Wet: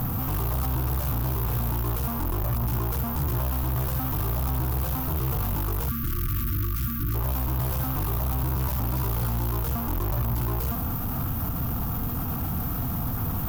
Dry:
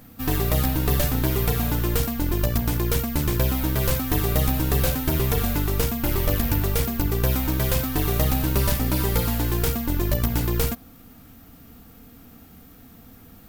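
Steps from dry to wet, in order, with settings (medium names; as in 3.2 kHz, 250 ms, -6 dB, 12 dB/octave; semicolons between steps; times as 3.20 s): fuzz box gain 49 dB, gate -58 dBFS; peak limiter -13 dBFS, peak gain reduction 5 dB; graphic EQ 125/250/500/1000/2000/4000/8000 Hz +6/-7/-8/+6/-11/-9/-10 dB; saturation -14 dBFS, distortion -19 dB; spectral selection erased 5.89–7.15 s, 370–1100 Hz; trim -6.5 dB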